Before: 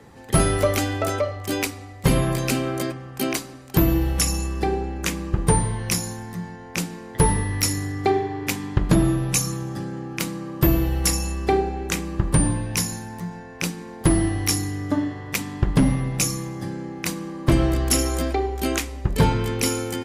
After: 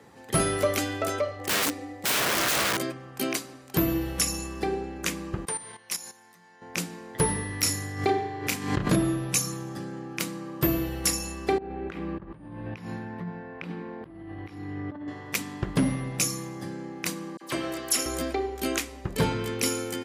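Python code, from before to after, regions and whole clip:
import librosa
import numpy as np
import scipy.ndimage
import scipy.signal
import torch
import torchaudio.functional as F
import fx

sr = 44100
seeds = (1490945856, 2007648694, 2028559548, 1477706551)

y = fx.chain(x, sr, fx.small_body(hz=(310.0, 510.0, 800.0, 1800.0), ring_ms=70, db=15),
    fx.overflow_wrap(gain_db=16.5), at=(1.39, 2.77))
y = fx.chain(y, sr, fx.highpass(hz=1100.0, slope=6),
    fx.level_steps(step_db=13), at=(5.45, 6.62))
y = fx.chain(y, sr, fx.doubler(ms=32.0, db=-5.5),
    fx.pre_swell(db_per_s=88.0), at=(7.63, 8.96))
y = fx.chain(y, sr, fx.over_compress(threshold_db=-30.0, ratio=-1.0),
    fx.air_absorb(metres=440.0), at=(11.58, 15.08))
y = fx.chain(y, sr, fx.highpass(hz=630.0, slope=6),
    fx.dispersion(late='lows', ms=42.0, hz=2700.0), at=(17.37, 18.06))
y = fx.highpass(y, sr, hz=210.0, slope=6)
y = fx.dynamic_eq(y, sr, hz=860.0, q=4.1, threshold_db=-44.0, ratio=4.0, max_db=-5)
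y = F.gain(torch.from_numpy(y), -3.0).numpy()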